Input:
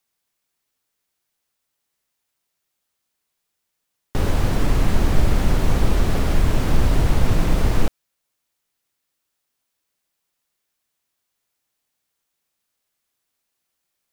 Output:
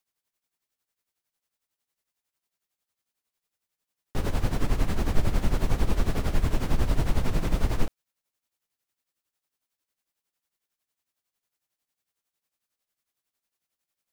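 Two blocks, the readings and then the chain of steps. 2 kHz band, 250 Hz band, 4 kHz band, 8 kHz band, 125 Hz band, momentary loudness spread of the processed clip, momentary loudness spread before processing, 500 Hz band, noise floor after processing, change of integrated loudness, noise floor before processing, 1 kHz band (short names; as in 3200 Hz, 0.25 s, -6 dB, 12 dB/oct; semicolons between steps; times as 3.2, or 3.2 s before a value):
-7.5 dB, -7.0 dB, -7.5 dB, -7.0 dB, -7.5 dB, 4 LU, 4 LU, -7.0 dB, under -85 dBFS, -7.5 dB, -78 dBFS, -7.0 dB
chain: tremolo 11 Hz, depth 72%; gain -4 dB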